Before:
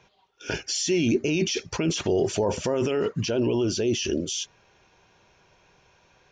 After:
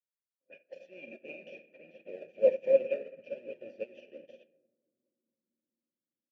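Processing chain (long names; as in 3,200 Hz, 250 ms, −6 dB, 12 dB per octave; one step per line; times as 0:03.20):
parametric band 2,400 Hz +8 dB 2.2 octaves
in parallel at −3.5 dB: sample-and-hold swept by an LFO 33×, swing 60% 2.8 Hz
on the sum: hollow resonant body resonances 200/560/2,400 Hz, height 16 dB, ringing for 25 ms
rotating-speaker cabinet horn 6.7 Hz
formant filter e
single-tap delay 738 ms −22.5 dB
on a send at −3.5 dB: convolution reverb, pre-delay 3 ms
on the sum: low-pass that shuts in the quiet parts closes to 310 Hz, open at −19 dBFS
low-shelf EQ 180 Hz −8.5 dB
expander for the loud parts 2.5 to 1, over −37 dBFS
level −5.5 dB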